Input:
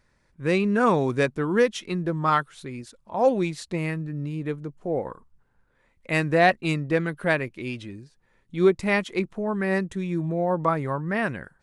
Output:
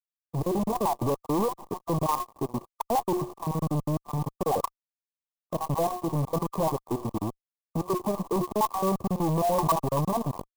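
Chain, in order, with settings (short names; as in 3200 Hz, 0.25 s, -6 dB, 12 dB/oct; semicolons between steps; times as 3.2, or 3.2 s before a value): random spectral dropouts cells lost 50%; HPF 77 Hz 24 dB/oct; low shelf 300 Hz -2 dB; de-hum 360 Hz, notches 21; in parallel at -2 dB: compressor 10:1, threshold -37 dBFS, peak gain reduction 22 dB; on the sum: fuzz box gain 39 dB, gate -40 dBFS; tempo 1.1×; overloaded stage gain 19 dB; brick-wall FIR band-stop 1200–6700 Hz; bell 9000 Hz +8 dB; low-pass sweep 3400 Hz -> 1300 Hz, 0.34–1.12; clock jitter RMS 0.039 ms; gain -5.5 dB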